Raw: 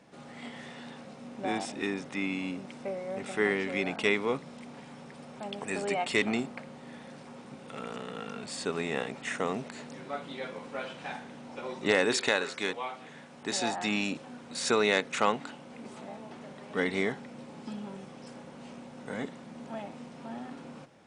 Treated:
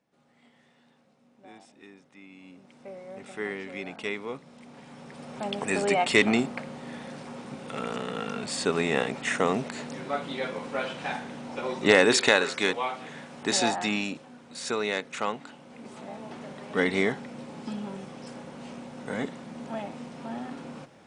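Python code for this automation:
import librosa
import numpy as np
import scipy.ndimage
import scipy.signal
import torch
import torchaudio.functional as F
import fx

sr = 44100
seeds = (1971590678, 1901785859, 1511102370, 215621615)

y = fx.gain(x, sr, db=fx.line((2.27, -18.0), (2.96, -6.0), (4.44, -6.0), (5.41, 6.5), (13.6, 6.5), (14.29, -3.5), (15.45, -3.5), (16.3, 4.5)))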